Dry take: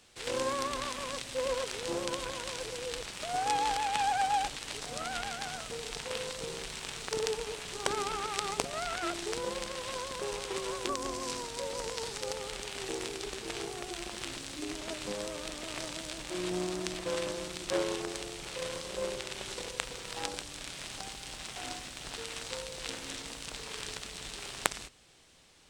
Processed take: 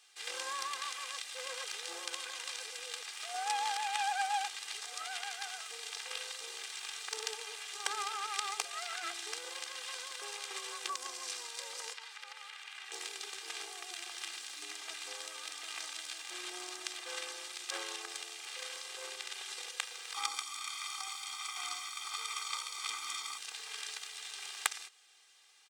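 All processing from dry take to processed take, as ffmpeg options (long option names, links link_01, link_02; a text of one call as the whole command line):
ffmpeg -i in.wav -filter_complex "[0:a]asettb=1/sr,asplit=3[link_01][link_02][link_03];[link_01]atrim=end=11.934[link_04];[link_02]atrim=start=11.93:end=12.92,asetpts=PTS-STARTPTS,afade=type=in:duration=0.004:curve=qsin,afade=type=out:start_time=0.986:duration=0.004:curve=qsin,highpass=1100,acrossover=split=3200[link_05][link_06];[link_06]acompressor=threshold=-53dB:ratio=4:attack=1:release=60[link_07];[link_05][link_07]amix=inputs=2:normalize=0[link_08];[link_03]atrim=start=12.916[link_09];[link_04][link_08]acrossfade=duration=0.004:curve1=hsin:curve2=qsin[link_10];[link_10][link_09]acrossfade=duration=0.004:curve1=qsin:curve2=hsin,asettb=1/sr,asplit=3[link_11][link_12][link_13];[link_11]atrim=end=20.144[link_14];[link_12]atrim=start=20.14:end=23.38,asetpts=PTS-STARTPTS,afade=type=in:duration=0.004:curve=qsin,afade=type=out:start_time=3.236:duration=0.004:curve=qsin,equalizer=frequency=1200:width_type=o:width=0.23:gain=9.5,aecho=1:1:0.9:0.97,atrim=end_sample=142884[link_15];[link_13]atrim=start=23.376[link_16];[link_14][link_15]acrossfade=duration=0.004:curve1=hsin:curve2=qsin[link_17];[link_17][link_16]acrossfade=duration=0.004:curve1=qsin:curve2=hsin,highpass=1100,aecho=1:1:2.5:0.93,volume=-4dB" out.wav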